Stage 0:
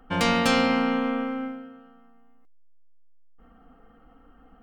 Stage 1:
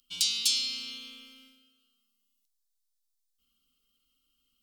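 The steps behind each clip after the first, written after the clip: inverse Chebyshev high-pass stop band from 1900 Hz, stop band 40 dB; in parallel at -2 dB: compressor, threshold -42 dBFS, peak gain reduction 12.5 dB; on the sum: gain +5.5 dB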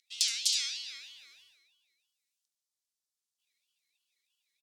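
band-pass 5900 Hz, Q 0.86; echo 71 ms -8 dB; ring modulator with a swept carrier 560 Hz, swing 75%, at 3.1 Hz; gain +2 dB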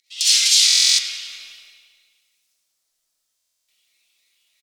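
feedback echo 0.179 s, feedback 39%, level -10 dB; reverb RT60 0.75 s, pre-delay 24 ms, DRR -9.5 dB; stuck buffer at 0.66/3.36, samples 1024, times 13; gain +5.5 dB

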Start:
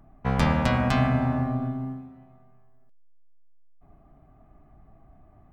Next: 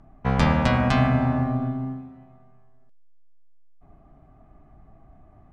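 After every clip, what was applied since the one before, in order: LPF 7800 Hz 12 dB/oct; gain +2.5 dB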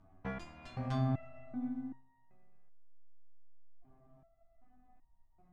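compressor 5:1, threshold -25 dBFS, peak gain reduction 11 dB; stepped resonator 2.6 Hz 94–930 Hz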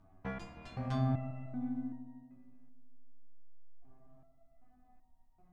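analogue delay 0.153 s, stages 1024, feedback 60%, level -12 dB

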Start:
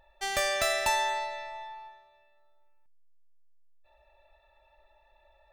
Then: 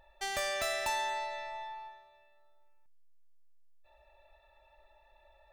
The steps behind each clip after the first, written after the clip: in parallel at +1 dB: compressor, threshold -37 dBFS, peak gain reduction 13 dB; on the sum: soft clip -20 dBFS, distortion -18 dB; gain -6.5 dB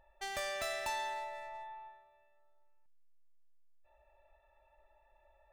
Wiener smoothing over 9 samples; gain -4 dB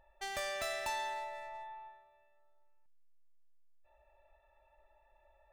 nothing audible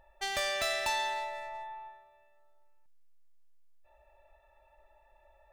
dynamic EQ 3700 Hz, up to +5 dB, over -53 dBFS, Q 0.9; gain +4.5 dB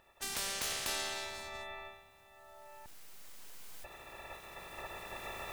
spectral limiter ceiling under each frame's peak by 29 dB; recorder AGC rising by 5.6 dB/s; gain -5 dB

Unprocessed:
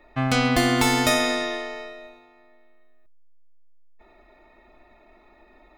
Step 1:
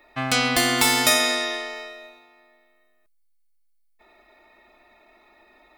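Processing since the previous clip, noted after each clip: tilt +2.5 dB/oct; notch 6600 Hz, Q 27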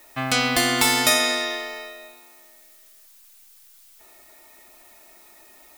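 added noise blue -52 dBFS

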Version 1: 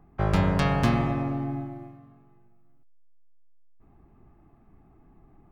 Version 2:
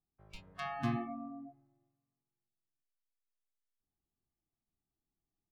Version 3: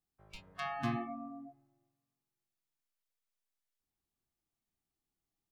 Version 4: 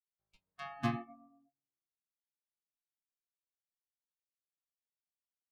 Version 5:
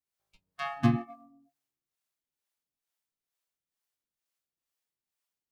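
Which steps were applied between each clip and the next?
high shelf 3100 Hz -11.5 dB; spectral noise reduction 29 dB; gain -7.5 dB
low shelf 390 Hz -4.5 dB; gain +2 dB
upward expander 2.5:1, over -55 dBFS; gain +4 dB
harmonic tremolo 2.2 Hz, depth 70%, crossover 410 Hz; in parallel at -9 dB: crossover distortion -57.5 dBFS; on the sum: gain +9 dB

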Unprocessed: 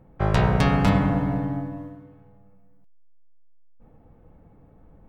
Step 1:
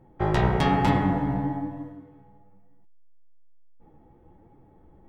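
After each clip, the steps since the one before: flange 1.1 Hz, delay 7 ms, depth 9 ms, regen +46%; small resonant body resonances 350/840/1900/3300 Hz, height 11 dB, ringing for 45 ms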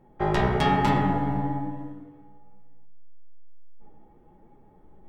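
bell 88 Hz -5 dB 2.4 oct; shoebox room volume 3100 m³, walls furnished, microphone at 1.3 m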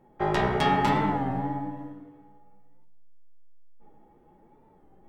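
low shelf 150 Hz -8 dB; record warp 33 1/3 rpm, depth 100 cents

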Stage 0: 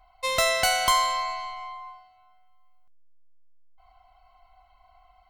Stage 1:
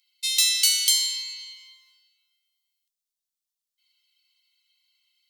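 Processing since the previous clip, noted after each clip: inverse Chebyshev high-pass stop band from 750 Hz, stop band 70 dB; gain +8.5 dB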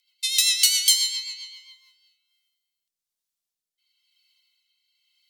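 rotary speaker horn 7.5 Hz, later 1 Hz, at 1.57; gain +3.5 dB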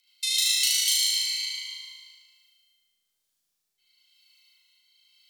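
compressor 2.5:1, threshold -33 dBFS, peak gain reduction 13 dB; on a send: flutter echo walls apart 6.4 m, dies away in 1.4 s; on the sum: gain +2.5 dB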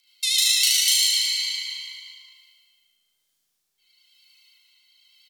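vibrato 9.8 Hz 34 cents; speakerphone echo 0.37 s, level -8 dB; gain +4 dB

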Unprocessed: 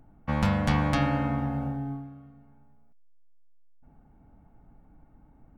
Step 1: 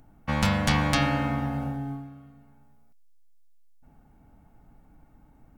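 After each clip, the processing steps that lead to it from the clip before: high shelf 2300 Hz +12 dB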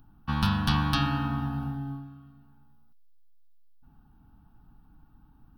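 fixed phaser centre 2100 Hz, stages 6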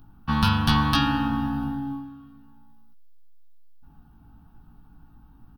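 doubler 18 ms -4.5 dB; gain +4 dB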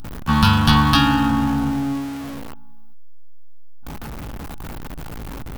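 zero-crossing step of -32 dBFS; gain +5.5 dB

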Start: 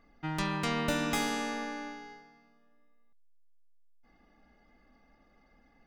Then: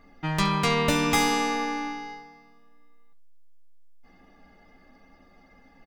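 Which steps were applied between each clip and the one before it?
notch 1500 Hz, Q 17; early reflections 11 ms -4.5 dB, 69 ms -15.5 dB; gain +7.5 dB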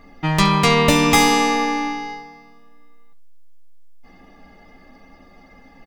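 notch 1500 Hz, Q 7.7; gain +8.5 dB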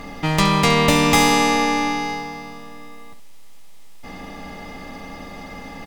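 per-bin compression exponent 0.6; gain -2.5 dB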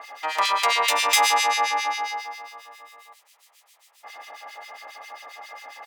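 HPF 670 Hz 24 dB/oct; harmonic tremolo 7.4 Hz, depth 100%, crossover 1800 Hz; gain +3 dB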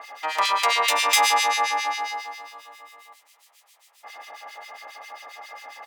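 multi-head echo 0.143 s, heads first and second, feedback 43%, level -23.5 dB

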